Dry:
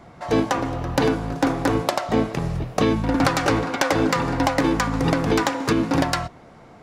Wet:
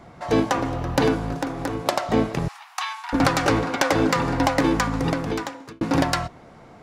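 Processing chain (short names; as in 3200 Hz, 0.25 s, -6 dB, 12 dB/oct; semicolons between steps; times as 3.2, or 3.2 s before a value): 1.34–1.86 compressor 4:1, threshold -25 dBFS, peak gain reduction 9 dB; 2.48–3.13 steep high-pass 810 Hz 72 dB/oct; 4.79–5.81 fade out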